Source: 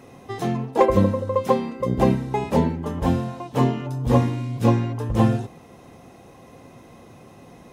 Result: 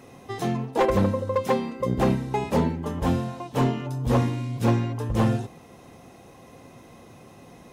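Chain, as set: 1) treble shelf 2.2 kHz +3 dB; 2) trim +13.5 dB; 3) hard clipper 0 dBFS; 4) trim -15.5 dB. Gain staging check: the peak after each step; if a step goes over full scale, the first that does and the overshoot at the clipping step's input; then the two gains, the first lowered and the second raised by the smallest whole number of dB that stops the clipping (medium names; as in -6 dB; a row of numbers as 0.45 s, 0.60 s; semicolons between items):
-5.0 dBFS, +8.5 dBFS, 0.0 dBFS, -15.5 dBFS; step 2, 8.5 dB; step 2 +4.5 dB, step 4 -6.5 dB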